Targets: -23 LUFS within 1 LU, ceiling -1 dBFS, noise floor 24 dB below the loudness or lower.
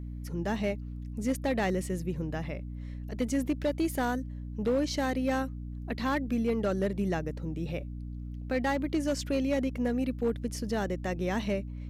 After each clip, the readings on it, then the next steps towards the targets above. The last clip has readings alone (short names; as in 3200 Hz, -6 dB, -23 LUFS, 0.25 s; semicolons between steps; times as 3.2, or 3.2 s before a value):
clipped 0.9%; flat tops at -21.5 dBFS; hum 60 Hz; harmonics up to 300 Hz; hum level -36 dBFS; loudness -32.0 LUFS; peak -21.5 dBFS; loudness target -23.0 LUFS
-> clip repair -21.5 dBFS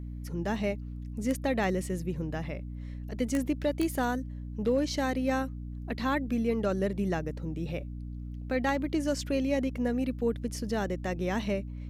clipped 0.0%; hum 60 Hz; harmonics up to 300 Hz; hum level -36 dBFS
-> de-hum 60 Hz, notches 5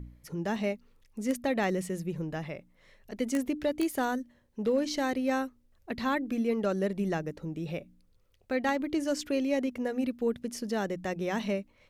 hum none; loudness -32.0 LUFS; peak -13.5 dBFS; loudness target -23.0 LUFS
-> gain +9 dB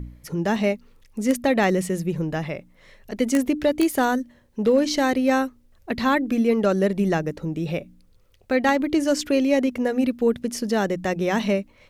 loudness -23.0 LUFS; peak -4.5 dBFS; noise floor -56 dBFS